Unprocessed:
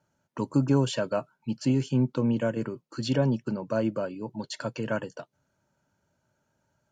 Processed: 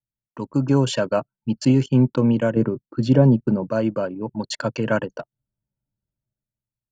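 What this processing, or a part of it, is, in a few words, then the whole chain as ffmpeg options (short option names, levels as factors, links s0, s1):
voice memo with heavy noise removal: -filter_complex "[0:a]asettb=1/sr,asplit=3[s0][s1][s2];[s0]atrim=end=2.554[s3];[s1]atrim=start=2.55:end=3.7,asetpts=PTS-STARTPTS,afade=t=in:d=0.004:c=qsin,afade=t=out:st=1.146:d=0.004:c=qsin,tiltshelf=f=1200:g=7[s4];[s2]atrim=start=3.696[s5];[s3][s4]acrossfade=d=0.004:c1=hsin:c2=qsin[s6];[s6][s5]acrossfade=d=0.004:c1=qsin:c2=hsin,anlmdn=0.398,dynaudnorm=f=120:g=11:m=3.16,volume=0.841"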